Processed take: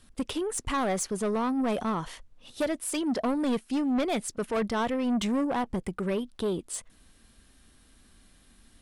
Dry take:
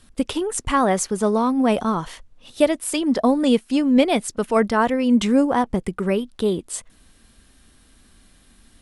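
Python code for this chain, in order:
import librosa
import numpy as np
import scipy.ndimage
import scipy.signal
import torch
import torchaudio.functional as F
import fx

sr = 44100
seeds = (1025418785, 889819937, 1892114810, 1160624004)

y = 10.0 ** (-18.0 / 20.0) * np.tanh(x / 10.0 ** (-18.0 / 20.0))
y = y * librosa.db_to_amplitude(-5.0)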